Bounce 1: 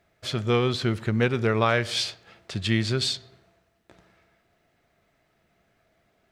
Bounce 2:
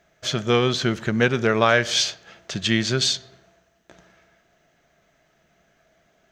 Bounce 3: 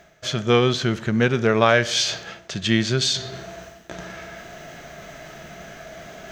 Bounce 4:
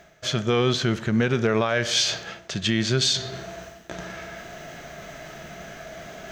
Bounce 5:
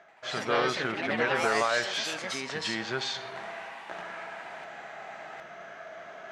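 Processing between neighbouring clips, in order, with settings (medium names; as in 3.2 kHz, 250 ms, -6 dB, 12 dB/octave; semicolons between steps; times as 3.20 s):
graphic EQ with 31 bands 100 Hz -11 dB, 160 Hz +4 dB, 630 Hz +4 dB, 1.6 kHz +5 dB, 3.15 kHz +4 dB, 6.3 kHz +11 dB, 10 kHz -9 dB; trim +3 dB
harmonic-percussive split harmonic +5 dB; reverse; upward compressor, threshold -18 dBFS; reverse; trim -2.5 dB
peak limiter -11 dBFS, peak gain reduction 9.5 dB
band-pass filter 1.1 kHz, Q 1.1; ever faster or slower copies 85 ms, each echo +3 st, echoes 3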